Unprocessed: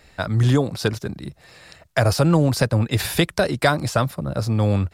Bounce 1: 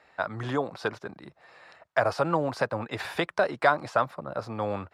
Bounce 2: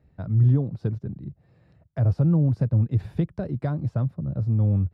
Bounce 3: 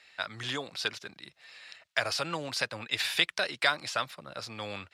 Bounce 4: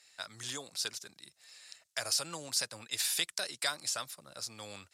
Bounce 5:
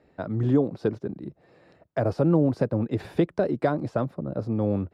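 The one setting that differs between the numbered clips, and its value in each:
band-pass, frequency: 1000, 120, 2900, 7300, 330 Hz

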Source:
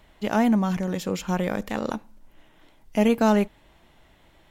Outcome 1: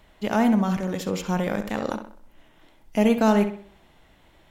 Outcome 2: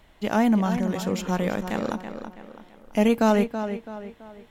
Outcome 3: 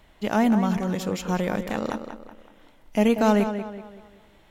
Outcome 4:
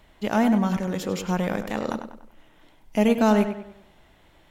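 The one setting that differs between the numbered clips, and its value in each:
tape echo, time: 66, 330, 189, 99 ms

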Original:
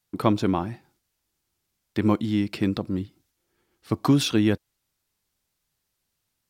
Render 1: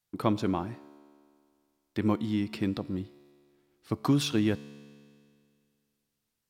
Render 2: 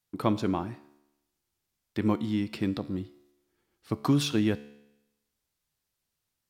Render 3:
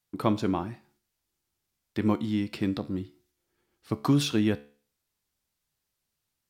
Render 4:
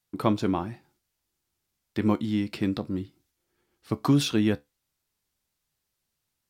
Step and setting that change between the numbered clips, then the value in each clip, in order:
resonator, decay: 2.2, 0.9, 0.43, 0.18 s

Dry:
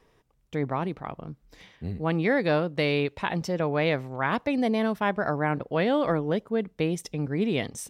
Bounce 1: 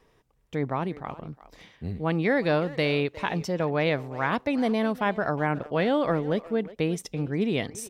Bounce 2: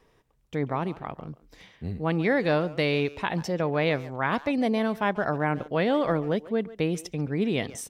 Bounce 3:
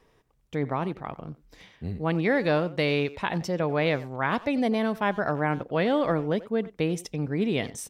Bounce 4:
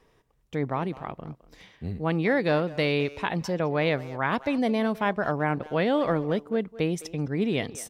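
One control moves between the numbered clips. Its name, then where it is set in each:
speakerphone echo, time: 360, 140, 90, 210 ms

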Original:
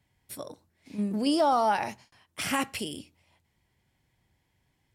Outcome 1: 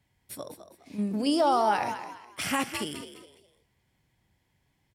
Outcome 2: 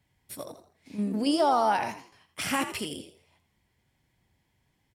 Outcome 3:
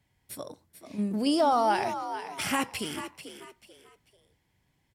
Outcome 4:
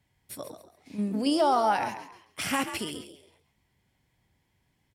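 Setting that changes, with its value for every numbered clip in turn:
frequency-shifting echo, time: 206, 83, 440, 137 ms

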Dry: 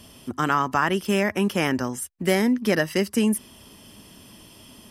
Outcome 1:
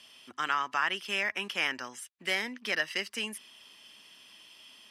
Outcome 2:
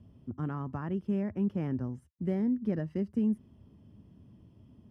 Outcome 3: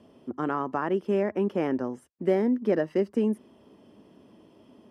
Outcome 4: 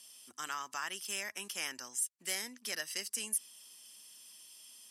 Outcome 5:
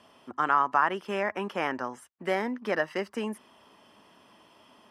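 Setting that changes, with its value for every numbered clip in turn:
band-pass, frequency: 2800, 100, 410, 7900, 1000 Hz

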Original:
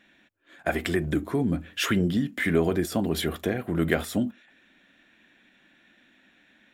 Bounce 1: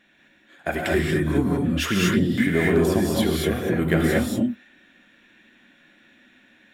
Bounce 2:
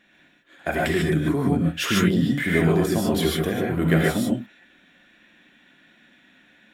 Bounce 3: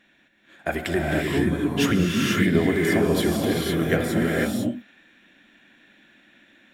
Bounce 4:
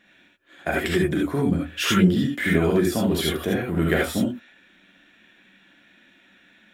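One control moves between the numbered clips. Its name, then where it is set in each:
non-linear reverb, gate: 0.26, 0.17, 0.53, 0.1 s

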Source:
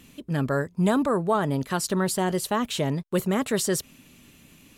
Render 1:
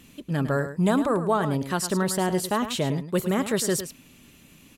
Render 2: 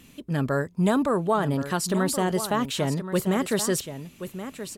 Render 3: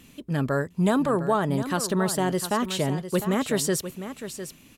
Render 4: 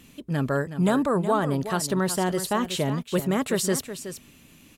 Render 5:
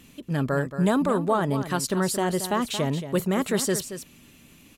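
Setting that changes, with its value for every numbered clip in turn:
echo, time: 0.106, 1.076, 0.704, 0.37, 0.226 s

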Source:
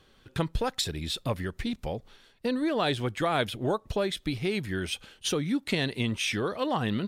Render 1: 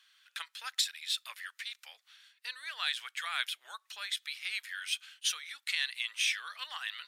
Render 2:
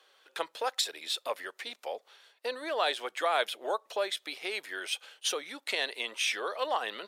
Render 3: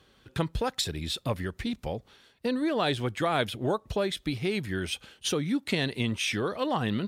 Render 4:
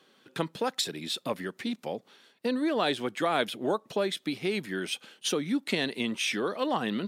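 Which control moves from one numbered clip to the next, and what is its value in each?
HPF, cutoff: 1500, 510, 41, 190 Hz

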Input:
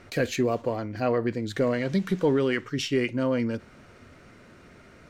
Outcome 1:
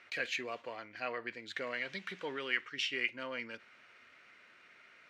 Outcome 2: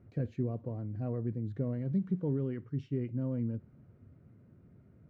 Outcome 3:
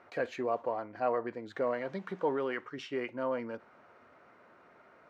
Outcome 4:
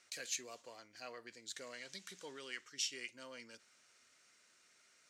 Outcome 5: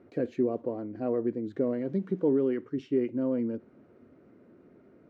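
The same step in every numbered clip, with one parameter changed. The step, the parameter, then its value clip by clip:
band-pass, frequency: 2400, 120, 900, 7200, 320 Hz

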